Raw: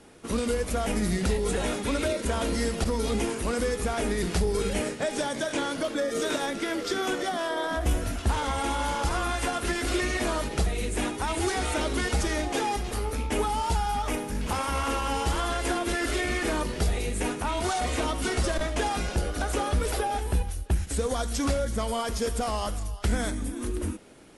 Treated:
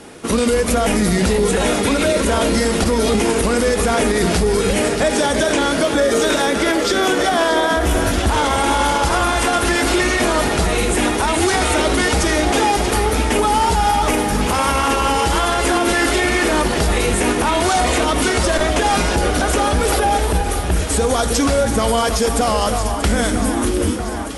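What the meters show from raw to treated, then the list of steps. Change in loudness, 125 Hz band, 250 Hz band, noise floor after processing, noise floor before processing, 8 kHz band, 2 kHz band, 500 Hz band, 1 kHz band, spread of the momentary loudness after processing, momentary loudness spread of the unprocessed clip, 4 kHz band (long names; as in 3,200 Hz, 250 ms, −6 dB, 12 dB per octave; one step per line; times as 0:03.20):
+12.0 dB, +8.5 dB, +12.0 dB, −20 dBFS, −36 dBFS, +12.5 dB, +12.5 dB, +12.5 dB, +12.5 dB, 2 LU, 3 LU, +12.5 dB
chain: low-shelf EQ 79 Hz −8 dB
delay that swaps between a low-pass and a high-pass 316 ms, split 2,200 Hz, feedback 86%, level −11 dB
boost into a limiter +21 dB
level −6.5 dB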